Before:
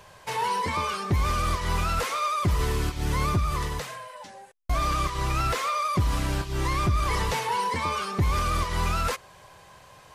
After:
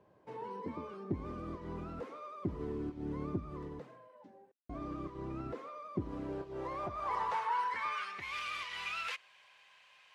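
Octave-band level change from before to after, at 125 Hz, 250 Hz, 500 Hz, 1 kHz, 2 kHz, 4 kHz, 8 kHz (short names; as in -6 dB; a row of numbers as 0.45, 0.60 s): -18.5 dB, -7.0 dB, -9.5 dB, -12.0 dB, -11.0 dB, -14.5 dB, under -20 dB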